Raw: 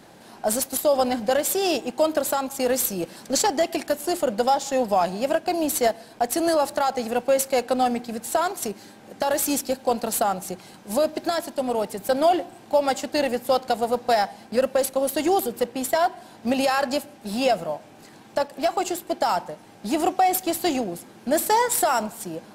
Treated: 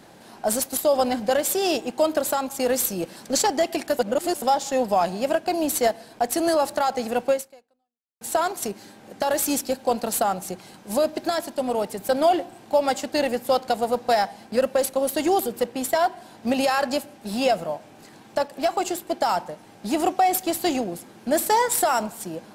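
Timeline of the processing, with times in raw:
3.99–4.42 reverse
7.31–8.21 fade out exponential

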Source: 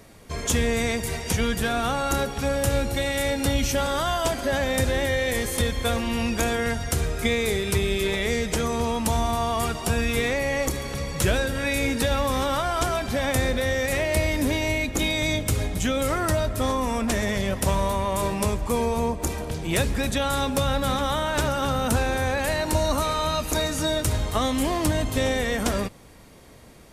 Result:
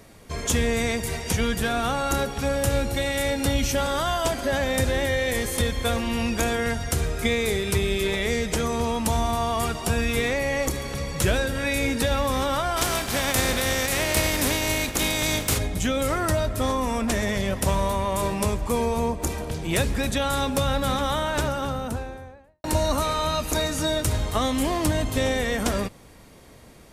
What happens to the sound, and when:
12.76–15.57 spectral contrast lowered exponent 0.58
21.17–22.64 studio fade out

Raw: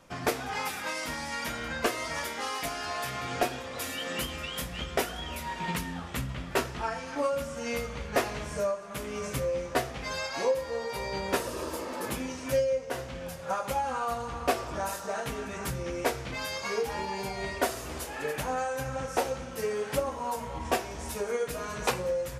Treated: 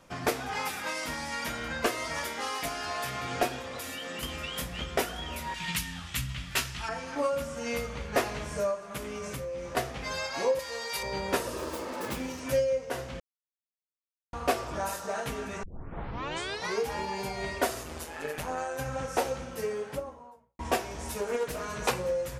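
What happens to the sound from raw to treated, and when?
3.75–4.23 compressor, threshold -34 dBFS
5.54–6.89 EQ curve 130 Hz 0 dB, 450 Hz -15 dB, 2900 Hz +6 dB
8.97–9.77 compressor, threshold -33 dBFS
10.59–11.03 tilt shelf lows -9.5 dB, about 1200 Hz
11.58–12.4 self-modulated delay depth 0.14 ms
13.2–14.33 mute
15.63 tape start 1.17 s
17.83–18.79 AM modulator 160 Hz, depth 45%
19.39–20.59 studio fade out
21.21–21.63 Doppler distortion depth 0.27 ms

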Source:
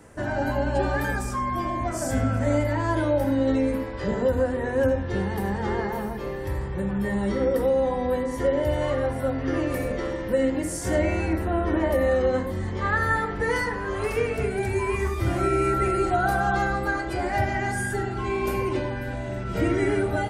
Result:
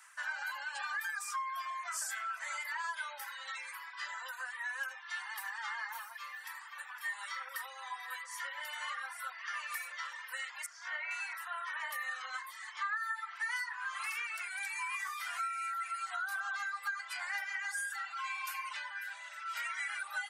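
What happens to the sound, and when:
6.16–7.12 echo throw 0.51 s, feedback 65%, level -9.5 dB
10.66–11.11 air absorption 230 m
whole clip: steep high-pass 1100 Hz 36 dB/oct; compressor 8:1, threshold -33 dBFS; reverb removal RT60 0.89 s

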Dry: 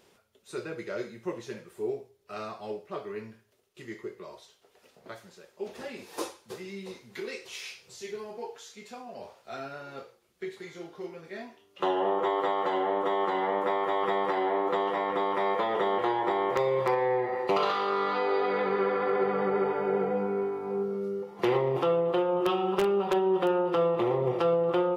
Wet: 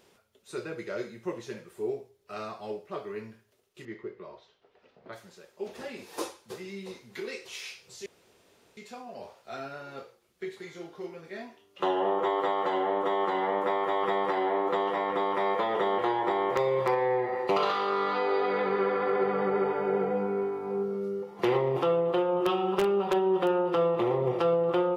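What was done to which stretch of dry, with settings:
3.85–5.13 air absorption 240 m
8.06–8.77 room tone

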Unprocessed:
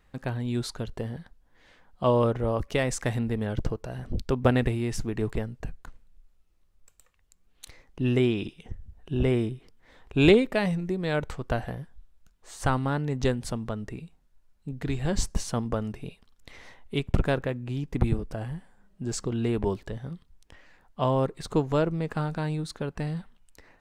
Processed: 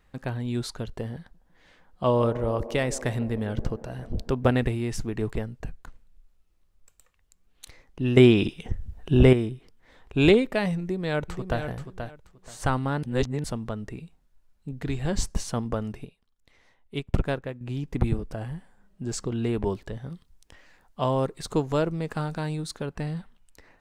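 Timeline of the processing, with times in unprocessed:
1.19–4.5 band-limited delay 0.152 s, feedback 68%, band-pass 450 Hz, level -13 dB
8.17–9.33 gain +8.5 dB
10.8–11.62 echo throw 0.48 s, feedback 20%, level -7.5 dB
13.03–13.44 reverse
16.05–17.61 upward expander, over -44 dBFS
20.1–22.86 tone controls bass -1 dB, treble +5 dB

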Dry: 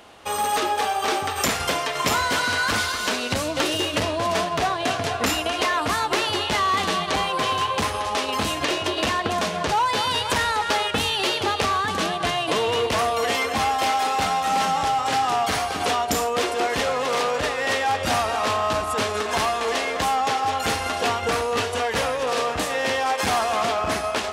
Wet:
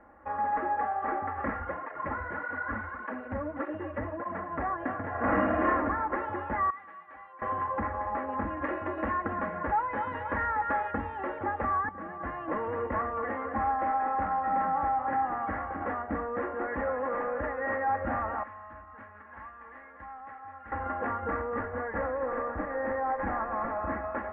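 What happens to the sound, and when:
1.6–4.49 tape flanging out of phase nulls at 1.7 Hz, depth 6.9 ms
5.1–5.66 reverb throw, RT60 1.4 s, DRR -6.5 dB
6.7–7.42 pre-emphasis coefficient 0.97
8.62–10.94 high shelf 3800 Hz +11 dB
11.89–12.43 fade in, from -14 dB
18.43–20.72 passive tone stack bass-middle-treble 5-5-5
21.59–23.82 decimation joined by straight lines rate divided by 6×
whole clip: Chebyshev low-pass 1900 Hz, order 5; low shelf 78 Hz +7 dB; comb 3.6 ms, depth 64%; gain -8.5 dB

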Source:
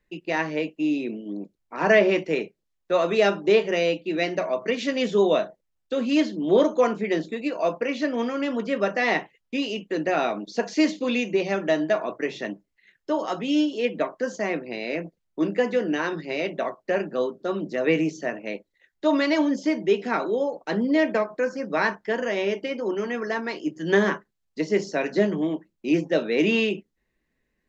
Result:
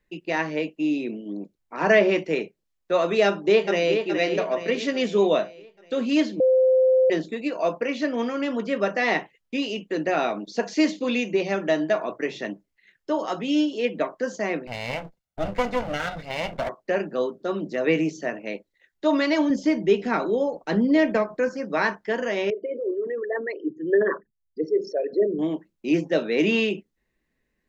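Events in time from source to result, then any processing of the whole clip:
3.25–4.02 echo throw 0.42 s, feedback 50%, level -6.5 dB
6.4–7.1 bleep 518 Hz -14.5 dBFS
14.67–16.69 minimum comb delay 1.4 ms
19.5–21.49 low shelf 150 Hz +11.5 dB
22.5–25.39 formant sharpening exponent 3

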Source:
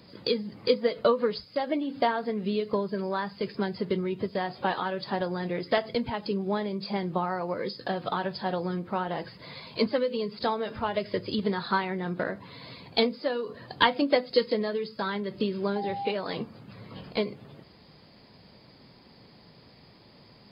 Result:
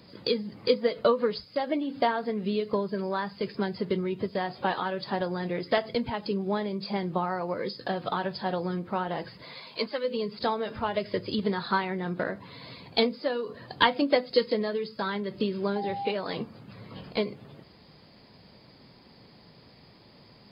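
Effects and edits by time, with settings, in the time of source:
9.43–10.03 HPF 260 Hz -> 1000 Hz 6 dB/oct

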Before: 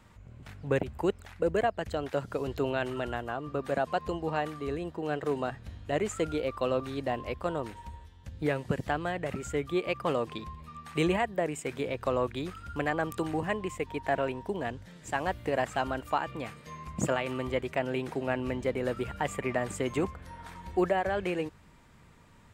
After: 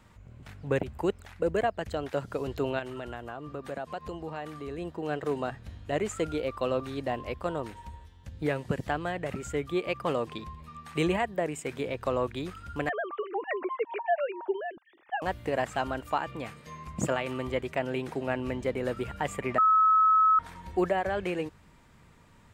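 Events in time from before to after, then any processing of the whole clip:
2.79–4.78 compressor 2:1, threshold -37 dBFS
12.89–15.22 sine-wave speech
19.58–20.39 bleep 1290 Hz -18 dBFS

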